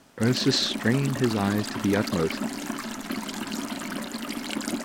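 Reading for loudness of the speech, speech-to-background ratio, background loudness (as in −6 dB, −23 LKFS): −25.5 LKFS, 7.0 dB, −32.5 LKFS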